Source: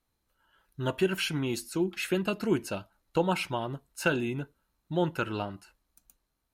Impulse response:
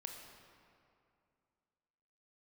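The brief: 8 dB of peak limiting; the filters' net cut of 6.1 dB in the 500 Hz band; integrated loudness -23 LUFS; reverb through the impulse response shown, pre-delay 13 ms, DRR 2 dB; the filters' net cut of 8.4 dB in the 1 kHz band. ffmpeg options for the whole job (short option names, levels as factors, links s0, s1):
-filter_complex "[0:a]equalizer=f=500:t=o:g=-7,equalizer=f=1000:t=o:g=-9,alimiter=limit=0.0631:level=0:latency=1,asplit=2[s0][s1];[1:a]atrim=start_sample=2205,adelay=13[s2];[s1][s2]afir=irnorm=-1:irlink=0,volume=1.12[s3];[s0][s3]amix=inputs=2:normalize=0,volume=3.55"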